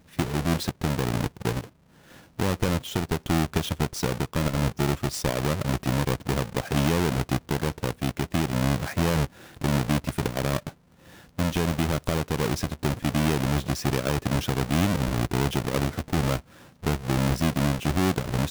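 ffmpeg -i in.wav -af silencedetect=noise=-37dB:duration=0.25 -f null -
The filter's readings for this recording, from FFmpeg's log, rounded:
silence_start: 1.64
silence_end: 2.39 | silence_duration: 0.75
silence_start: 9.26
silence_end: 9.61 | silence_duration: 0.35
silence_start: 10.69
silence_end: 11.39 | silence_duration: 0.69
silence_start: 16.40
silence_end: 16.83 | silence_duration: 0.43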